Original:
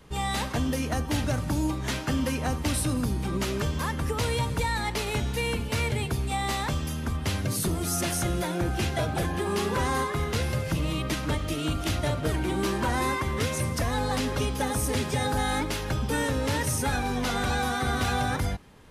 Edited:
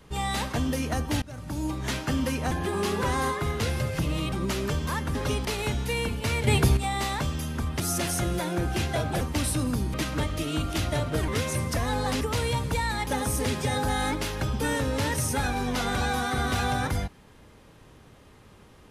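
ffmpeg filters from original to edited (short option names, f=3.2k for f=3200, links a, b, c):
-filter_complex "[0:a]asplit=14[a][b][c][d][e][f][g][h][i][j][k][l][m][n];[a]atrim=end=1.22,asetpts=PTS-STARTPTS,afade=t=out:st=1.216:d=0.004:c=hsin:silence=0.0668344[o];[b]atrim=start=1.22:end=2.512,asetpts=PTS-STARTPTS,afade=t=in:d=0.63:silence=0.0668344[p];[c]atrim=start=9.238:end=11.052[q];[d]atrim=start=3.238:end=4.072[r];[e]atrim=start=14.258:end=14.562[s];[f]atrim=start=4.928:end=5.952[t];[g]atrim=start=5.948:end=6.252,asetpts=PTS-STARTPTS,volume=8dB[u];[h]atrim=start=6.248:end=7.282[v];[i]atrim=start=7.828:end=9.242[w];[j]atrim=start=2.508:end=3.242[x];[k]atrim=start=11.048:end=12.392[y];[l]atrim=start=13.328:end=14.262[z];[m]atrim=start=4.068:end=4.932[aa];[n]atrim=start=14.558[ab];[o][p]concat=n=2:v=0:a=1[ac];[ac][q]acrossfade=d=0.004:c1=hsin:c2=hsin[ad];[ad][r]acrossfade=d=0.004:c1=hsin:c2=hsin[ae];[ae][s]acrossfade=d=0.004:c1=hsin:c2=hsin[af];[af][t]acrossfade=d=0.004:c1=hsin:c2=hsin[ag];[ag][u]acrossfade=d=0.004:c1=hsin:c2=hsin[ah];[ah][v]acrossfade=d=0.004:c1=hsin:c2=hsin[ai];[ai][w]acrossfade=d=0.004:c1=hsin:c2=hsin[aj];[aj][x]acrossfade=d=0.004:c1=hsin:c2=hsin[ak];[ak][y]acrossfade=d=0.004:c1=hsin:c2=hsin[al];[al][z]acrossfade=d=0.004:c1=hsin:c2=hsin[am];[am][aa]acrossfade=d=0.004:c1=hsin:c2=hsin[an];[an][ab]acrossfade=d=0.004:c1=hsin:c2=hsin"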